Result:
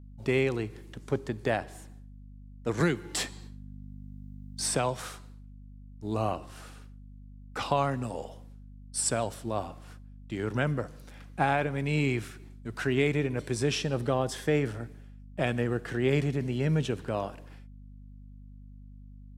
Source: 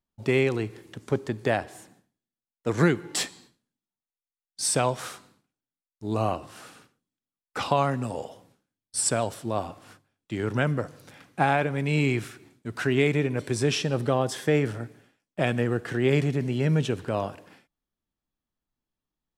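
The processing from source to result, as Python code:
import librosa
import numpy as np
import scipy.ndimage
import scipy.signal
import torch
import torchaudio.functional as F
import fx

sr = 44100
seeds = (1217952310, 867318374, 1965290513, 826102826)

y = fx.add_hum(x, sr, base_hz=50, snr_db=16)
y = fx.band_squash(y, sr, depth_pct=40, at=(2.8, 5.02))
y = F.gain(torch.from_numpy(y), -3.5).numpy()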